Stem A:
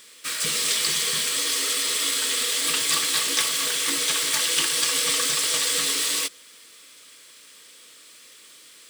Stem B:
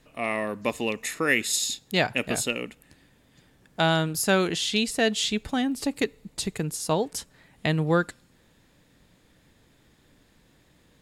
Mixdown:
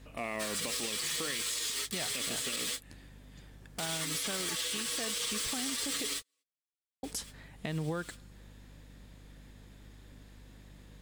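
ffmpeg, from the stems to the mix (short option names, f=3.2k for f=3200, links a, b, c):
-filter_complex "[0:a]asplit=2[a][b];[b]adelay=7.2,afreqshift=-0.52[c];[a][c]amix=inputs=2:normalize=1,adelay=150,volume=0.5dB[d];[1:a]acompressor=threshold=-27dB:ratio=12,aeval=exprs='val(0)+0.002*(sin(2*PI*50*n/s)+sin(2*PI*2*50*n/s)/2+sin(2*PI*3*50*n/s)/3+sin(2*PI*4*50*n/s)/4+sin(2*PI*5*50*n/s)/5)':c=same,volume=1.5dB,asplit=3[e][f][g];[e]atrim=end=6.22,asetpts=PTS-STARTPTS,afade=t=out:st=6.216:d=0.004:c=hsin[h];[f]atrim=start=6.22:end=7.03,asetpts=PTS-STARTPTS,volume=0[i];[g]atrim=start=7.03,asetpts=PTS-STARTPTS,afade=t=in:d=0.004:c=hsin[j];[h][i][j]concat=n=3:v=0:a=1,asplit=2[k][l];[l]apad=whole_len=399003[m];[d][m]sidechaingate=range=-54dB:threshold=-43dB:ratio=16:detection=peak[n];[n][k]amix=inputs=2:normalize=0,alimiter=level_in=1dB:limit=-24dB:level=0:latency=1:release=175,volume=-1dB"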